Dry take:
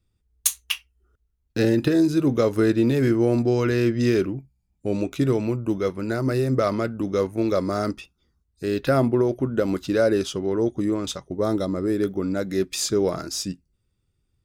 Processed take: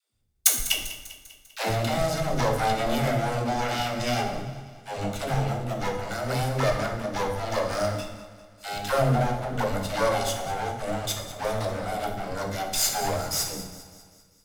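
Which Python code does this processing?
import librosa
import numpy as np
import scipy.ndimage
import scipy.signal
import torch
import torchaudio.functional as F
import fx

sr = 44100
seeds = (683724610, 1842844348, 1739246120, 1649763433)

p1 = fx.lower_of_two(x, sr, delay_ms=1.4)
p2 = fx.peak_eq(p1, sr, hz=12000.0, db=7.0, octaves=3.0)
p3 = fx.dispersion(p2, sr, late='lows', ms=142.0, hz=310.0)
p4 = p3 + fx.echo_feedback(p3, sr, ms=198, feedback_pct=54, wet_db=-15.0, dry=0)
p5 = fx.rev_plate(p4, sr, seeds[0], rt60_s=0.98, hf_ratio=0.75, predelay_ms=0, drr_db=2.5)
y = p5 * 10.0 ** (-3.0 / 20.0)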